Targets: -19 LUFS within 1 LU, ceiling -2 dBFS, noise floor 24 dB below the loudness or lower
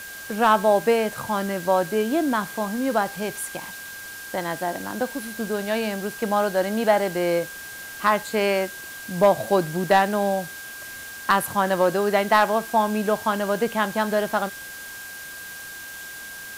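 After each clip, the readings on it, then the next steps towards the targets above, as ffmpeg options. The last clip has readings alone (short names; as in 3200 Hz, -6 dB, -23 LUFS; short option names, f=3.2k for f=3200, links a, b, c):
steady tone 1600 Hz; tone level -37 dBFS; noise floor -38 dBFS; noise floor target -47 dBFS; loudness -23.0 LUFS; peak -7.5 dBFS; loudness target -19.0 LUFS
-> -af "bandreject=f=1.6k:w=30"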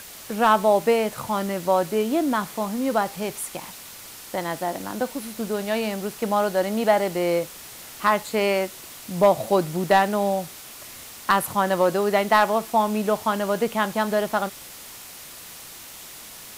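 steady tone none; noise floor -42 dBFS; noise floor target -47 dBFS
-> -af "afftdn=nr=6:nf=-42"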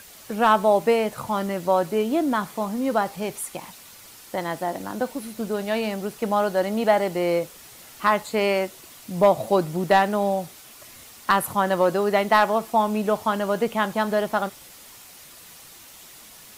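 noise floor -46 dBFS; noise floor target -47 dBFS
-> -af "afftdn=nr=6:nf=-46"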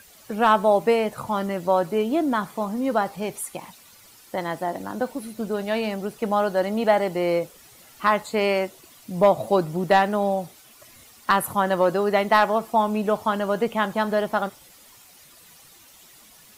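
noise floor -51 dBFS; loudness -23.0 LUFS; peak -8.0 dBFS; loudness target -19.0 LUFS
-> -af "volume=4dB"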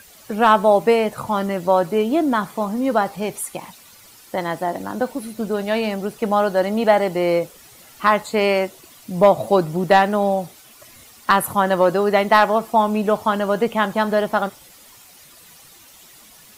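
loudness -19.0 LUFS; peak -4.0 dBFS; noise floor -47 dBFS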